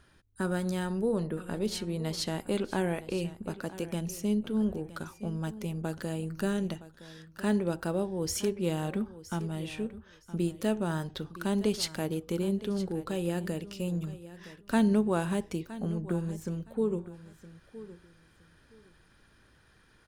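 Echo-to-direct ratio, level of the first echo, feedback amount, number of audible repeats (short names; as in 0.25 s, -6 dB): -16.0 dB, -16.0 dB, 21%, 2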